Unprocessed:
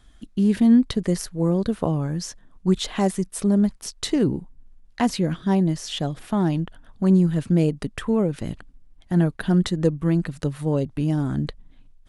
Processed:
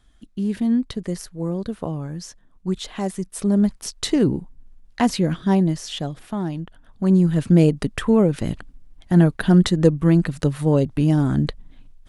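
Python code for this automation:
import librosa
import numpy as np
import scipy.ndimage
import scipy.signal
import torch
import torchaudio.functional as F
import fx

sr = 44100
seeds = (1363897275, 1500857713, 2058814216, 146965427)

y = fx.gain(x, sr, db=fx.line((3.02, -4.5), (3.71, 2.5), (5.54, 2.5), (6.55, -5.5), (7.53, 5.0)))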